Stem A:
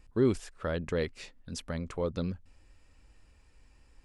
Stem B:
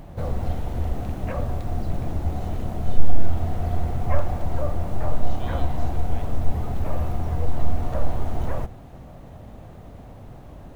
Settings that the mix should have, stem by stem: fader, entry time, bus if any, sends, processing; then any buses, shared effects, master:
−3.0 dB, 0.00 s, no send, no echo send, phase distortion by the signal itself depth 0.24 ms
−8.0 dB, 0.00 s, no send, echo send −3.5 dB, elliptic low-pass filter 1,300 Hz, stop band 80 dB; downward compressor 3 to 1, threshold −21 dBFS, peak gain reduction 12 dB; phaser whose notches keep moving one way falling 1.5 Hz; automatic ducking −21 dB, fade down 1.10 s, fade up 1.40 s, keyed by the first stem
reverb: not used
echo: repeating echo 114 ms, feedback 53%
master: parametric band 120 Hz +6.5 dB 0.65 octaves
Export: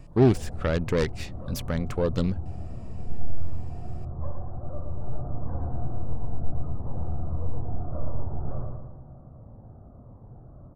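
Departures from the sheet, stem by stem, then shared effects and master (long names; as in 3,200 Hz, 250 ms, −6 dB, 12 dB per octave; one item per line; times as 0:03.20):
stem A −3.0 dB → +6.0 dB
stem B: missing downward compressor 3 to 1, threshold −21 dBFS, peak gain reduction 12 dB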